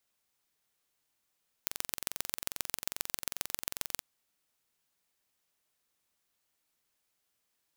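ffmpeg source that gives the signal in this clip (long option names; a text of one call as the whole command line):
ffmpeg -f lavfi -i "aevalsrc='0.668*eq(mod(n,1969),0)*(0.5+0.5*eq(mod(n,5907),0))':duration=2.33:sample_rate=44100" out.wav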